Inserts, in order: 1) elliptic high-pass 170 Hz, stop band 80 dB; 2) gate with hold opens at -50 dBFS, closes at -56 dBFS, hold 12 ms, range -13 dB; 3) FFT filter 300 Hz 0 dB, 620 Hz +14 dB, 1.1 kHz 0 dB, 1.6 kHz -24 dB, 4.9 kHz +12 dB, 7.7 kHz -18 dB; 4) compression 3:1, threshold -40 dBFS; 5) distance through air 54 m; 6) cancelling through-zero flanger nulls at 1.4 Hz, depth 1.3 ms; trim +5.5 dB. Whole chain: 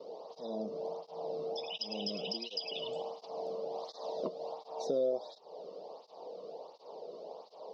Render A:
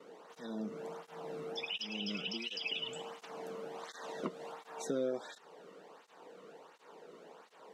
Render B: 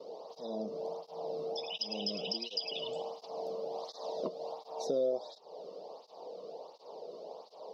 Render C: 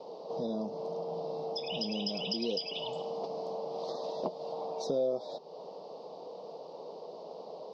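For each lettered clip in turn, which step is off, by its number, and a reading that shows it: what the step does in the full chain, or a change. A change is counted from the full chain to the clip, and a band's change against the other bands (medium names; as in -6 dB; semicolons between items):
3, 2 kHz band +9.5 dB; 5, 4 kHz band +1.5 dB; 6, 125 Hz band +4.5 dB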